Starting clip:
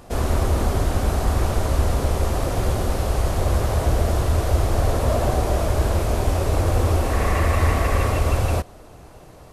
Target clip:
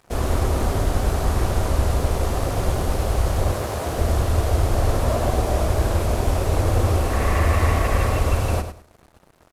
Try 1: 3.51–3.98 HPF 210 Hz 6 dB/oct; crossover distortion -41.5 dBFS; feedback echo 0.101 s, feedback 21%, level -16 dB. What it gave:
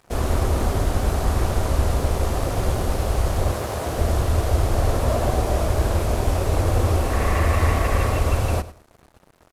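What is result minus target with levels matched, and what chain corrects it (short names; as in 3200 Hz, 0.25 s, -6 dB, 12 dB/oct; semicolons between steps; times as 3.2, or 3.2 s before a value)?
echo-to-direct -6.5 dB
3.51–3.98 HPF 210 Hz 6 dB/oct; crossover distortion -41.5 dBFS; feedback echo 0.101 s, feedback 21%, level -9.5 dB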